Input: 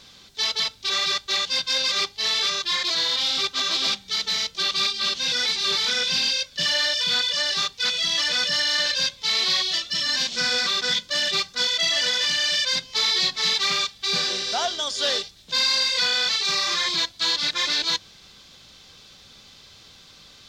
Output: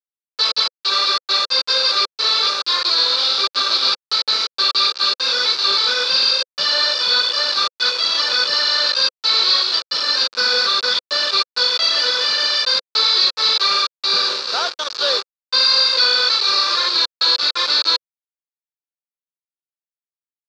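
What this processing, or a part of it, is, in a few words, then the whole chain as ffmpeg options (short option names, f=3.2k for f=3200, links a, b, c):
hand-held game console: -af "acrusher=bits=3:mix=0:aa=0.000001,highpass=460,equalizer=f=510:t=q:w=4:g=5,equalizer=f=720:t=q:w=4:g=-9,equalizer=f=1.3k:t=q:w=4:g=6,equalizer=f=2k:t=q:w=4:g=-10,equalizer=f=3.1k:t=q:w=4:g=-8,equalizer=f=4.5k:t=q:w=4:g=8,lowpass=f=4.6k:w=0.5412,lowpass=f=4.6k:w=1.3066,volume=5.5dB"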